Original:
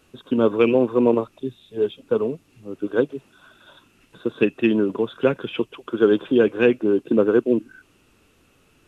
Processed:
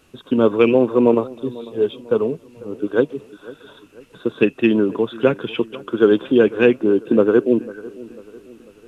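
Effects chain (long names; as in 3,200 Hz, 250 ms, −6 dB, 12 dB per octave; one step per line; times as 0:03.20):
delay with a low-pass on its return 496 ms, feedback 46%, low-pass 1,500 Hz, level −19.5 dB
level +3 dB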